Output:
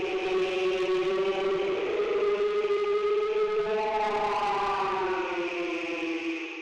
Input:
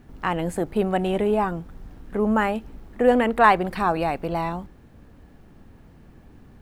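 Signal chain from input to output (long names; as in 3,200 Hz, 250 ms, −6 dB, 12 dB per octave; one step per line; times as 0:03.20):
loose part that buzzes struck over −31 dBFS, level −23 dBFS
brick-wall band-pass 310–6,800 Hz
extreme stretch with random phases 11×, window 0.10 s, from 0:01.02
in parallel at −3 dB: brickwall limiter −16.5 dBFS, peak gain reduction 7 dB
on the sum: graphic EQ with 15 bands 630 Hz −11 dB, 1,600 Hz −11 dB, 4,000 Hz −11 dB
soft clipping −27.5 dBFS, distortion −8 dB
on a send at −8.5 dB: convolution reverb RT60 0.80 s, pre-delay 27 ms
on the sum: level +2.5 dB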